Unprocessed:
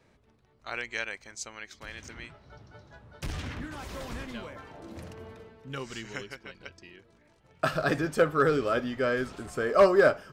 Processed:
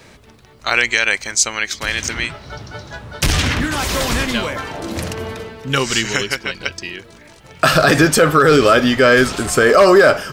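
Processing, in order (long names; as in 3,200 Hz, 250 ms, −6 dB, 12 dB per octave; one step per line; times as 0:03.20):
high-shelf EQ 2,100 Hz +9 dB
boost into a limiter +19 dB
level −1 dB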